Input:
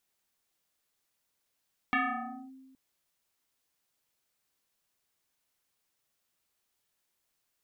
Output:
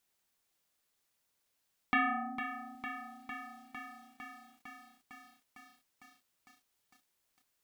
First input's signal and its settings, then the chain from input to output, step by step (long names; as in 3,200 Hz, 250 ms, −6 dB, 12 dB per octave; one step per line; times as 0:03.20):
two-operator FM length 0.82 s, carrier 264 Hz, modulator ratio 1.89, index 4.5, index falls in 0.58 s linear, decay 1.46 s, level −23 dB
feedback echo at a low word length 454 ms, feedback 80%, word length 10 bits, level −9.5 dB